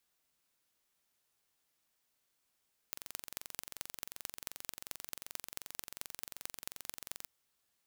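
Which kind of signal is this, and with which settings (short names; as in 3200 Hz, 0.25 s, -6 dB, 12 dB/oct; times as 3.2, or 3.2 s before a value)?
pulse train 22.7/s, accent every 5, -11 dBFS 4.36 s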